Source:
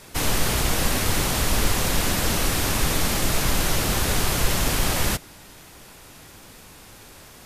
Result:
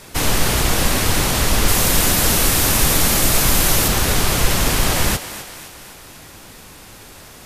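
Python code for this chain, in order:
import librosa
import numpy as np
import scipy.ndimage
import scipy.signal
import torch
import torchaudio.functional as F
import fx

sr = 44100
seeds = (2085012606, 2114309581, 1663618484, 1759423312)

y = fx.high_shelf(x, sr, hz=7700.0, db=8.0, at=(1.68, 3.88))
y = fx.echo_thinned(y, sr, ms=256, feedback_pct=54, hz=340.0, wet_db=-12)
y = F.gain(torch.from_numpy(y), 5.0).numpy()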